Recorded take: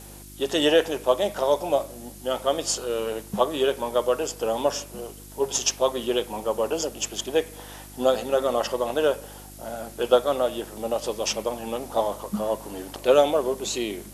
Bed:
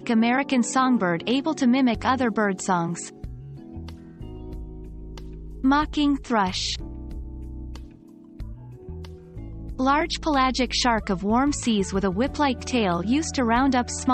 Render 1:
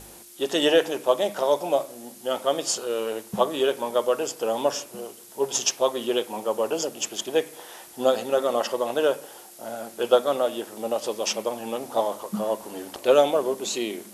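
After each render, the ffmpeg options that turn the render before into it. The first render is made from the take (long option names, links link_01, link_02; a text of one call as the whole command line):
ffmpeg -i in.wav -af "bandreject=frequency=50:width_type=h:width=4,bandreject=frequency=100:width_type=h:width=4,bandreject=frequency=150:width_type=h:width=4,bandreject=frequency=200:width_type=h:width=4,bandreject=frequency=250:width_type=h:width=4,bandreject=frequency=300:width_type=h:width=4" out.wav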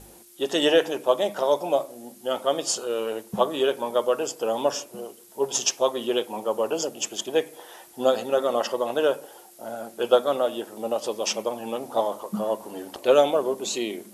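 ffmpeg -i in.wav -af "afftdn=noise_reduction=6:noise_floor=-46" out.wav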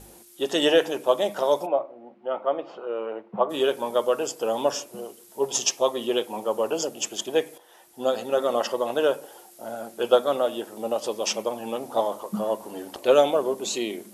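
ffmpeg -i in.wav -filter_complex "[0:a]asplit=3[link_01][link_02][link_03];[link_01]afade=type=out:start_time=1.65:duration=0.02[link_04];[link_02]highpass=frequency=150:width=0.5412,highpass=frequency=150:width=1.3066,equalizer=frequency=160:width_type=q:width=4:gain=-9,equalizer=frequency=250:width_type=q:width=4:gain=-8,equalizer=frequency=420:width_type=q:width=4:gain=-4,equalizer=frequency=1700:width_type=q:width=4:gain=-7,lowpass=frequency=2100:width=0.5412,lowpass=frequency=2100:width=1.3066,afade=type=in:start_time=1.65:duration=0.02,afade=type=out:start_time=3.49:duration=0.02[link_05];[link_03]afade=type=in:start_time=3.49:duration=0.02[link_06];[link_04][link_05][link_06]amix=inputs=3:normalize=0,asettb=1/sr,asplit=3[link_07][link_08][link_09];[link_07]atrim=end=5.414[link_10];[link_08]atrim=start=5.41:end=6.14,asetpts=PTS-STARTPTS,afade=type=in:duration=0.004:curve=qsin,afade=type=out:start_time=0.726:duration=0.004:curve=qsin,bandreject=frequency=1500:width=8.6[link_11];[link_09]atrim=start=6.136[link_12];[link_10][link_11]acrossfade=duration=0.004:curve1=hsin:curve2=qsin[link_13];[link_13][link_12]acrossfade=duration=0.004:curve1=qsin:curve2=hsin,asplit=2[link_14][link_15];[link_14]atrim=end=7.58,asetpts=PTS-STARTPTS,afade=type=out:start_time=7.576:duration=0.004:curve=hsin:silence=0.237137[link_16];[link_15]atrim=start=7.58,asetpts=PTS-STARTPTS,afade=type=in:duration=0.86:silence=0.237137[link_17];[link_16][link_17]concat=n=2:v=0:a=1" out.wav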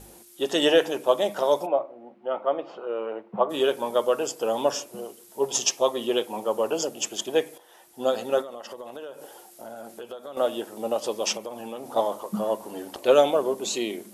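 ffmpeg -i in.wav -filter_complex "[0:a]asettb=1/sr,asplit=3[link_01][link_02][link_03];[link_01]atrim=end=8.414[link_04];[link_02]atrim=start=8.41:end=10.37,asetpts=PTS-STARTPTS,afade=type=in:duration=0.004:curve=qsin,afade=type=out:start_time=1.956:duration=0.004:curve=qsin,acompressor=threshold=-35dB:ratio=8:attack=3.2:release=140:knee=1:detection=peak[link_05];[link_03]atrim=start=10.366[link_06];[link_04][link_05]acrossfade=duration=0.004:curve1=hsin:curve2=qsin[link_07];[link_07][link_06]acrossfade=duration=0.004:curve1=qsin:curve2=hsin,asettb=1/sr,asplit=3[link_08][link_09][link_10];[link_08]atrim=end=11.374[link_11];[link_09]atrim=start=11.37:end=11.96,asetpts=PTS-STARTPTS,afade=type=in:duration=0.004:curve=qsin,afade=type=out:start_time=0.586:duration=0.004:curve=qsin,acompressor=threshold=-33dB:ratio=3:attack=3.2:release=140:knee=1:detection=peak[link_12];[link_10]atrim=start=11.956[link_13];[link_11][link_12]acrossfade=duration=0.004:curve1=hsin:curve2=qsin[link_14];[link_14][link_13]acrossfade=duration=0.004:curve1=qsin:curve2=hsin" out.wav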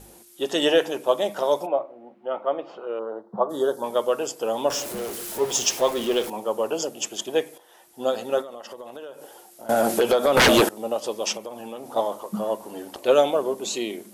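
ffmpeg -i in.wav -filter_complex "[0:a]asettb=1/sr,asplit=3[link_01][link_02][link_03];[link_01]atrim=end=2.994[link_04];[link_02]atrim=start=2.99:end=3.84,asetpts=PTS-STARTPTS,afade=type=in:duration=0.004:curve=qsin,afade=type=out:start_time=0.846:duration=0.004:curve=qsin,asuperstop=centerf=2500:order=4:qfactor=0.99[link_05];[link_03]atrim=start=3.836[link_06];[link_04][link_05]acrossfade=duration=0.004:curve1=hsin:curve2=qsin[link_07];[link_07][link_06]acrossfade=duration=0.004:curve1=qsin:curve2=hsin,asettb=1/sr,asplit=3[link_08][link_09][link_10];[link_08]atrim=end=4.704[link_11];[link_09]atrim=start=4.7:end=6.3,asetpts=PTS-STARTPTS,afade=type=in:duration=0.004:curve=qsin,afade=type=out:start_time=1.596:duration=0.004:curve=qsin,aeval=exprs='val(0)+0.5*0.0355*sgn(val(0))':channel_layout=same[link_12];[link_10]atrim=start=6.296[link_13];[link_11][link_12]acrossfade=duration=0.004:curve1=hsin:curve2=qsin[link_14];[link_14][link_13]acrossfade=duration=0.004:curve1=qsin:curve2=hsin,asettb=1/sr,asplit=3[link_15][link_16][link_17];[link_15]atrim=end=9.694[link_18];[link_16]atrim=start=9.69:end=10.69,asetpts=PTS-STARTPTS,afade=type=in:duration=0.004:curve=qsin,afade=type=out:start_time=0.996:duration=0.004:curve=qsin,aeval=exprs='0.266*sin(PI/2*7.08*val(0)/0.266)':channel_layout=same[link_19];[link_17]atrim=start=10.686[link_20];[link_18][link_19]acrossfade=duration=0.004:curve1=hsin:curve2=qsin[link_21];[link_21][link_20]acrossfade=duration=0.004:curve1=qsin:curve2=hsin" out.wav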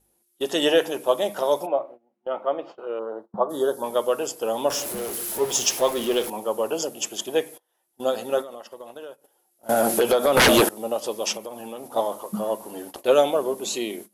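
ffmpeg -i in.wav -af "agate=range=-22dB:threshold=-39dB:ratio=16:detection=peak,equalizer=frequency=11000:width=2.8:gain=8.5" out.wav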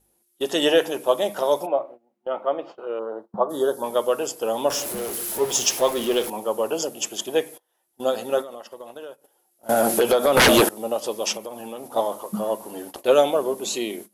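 ffmpeg -i in.wav -af "volume=1dB" out.wav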